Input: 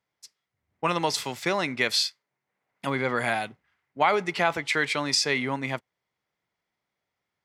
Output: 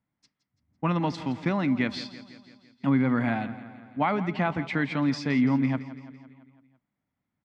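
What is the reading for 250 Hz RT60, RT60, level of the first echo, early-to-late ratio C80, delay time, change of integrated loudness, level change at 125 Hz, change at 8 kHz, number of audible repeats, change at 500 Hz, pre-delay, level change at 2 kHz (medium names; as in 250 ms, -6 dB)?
no reverb, no reverb, -15.0 dB, no reverb, 168 ms, -1.0 dB, +8.0 dB, under -15 dB, 5, -4.5 dB, no reverb, -6.0 dB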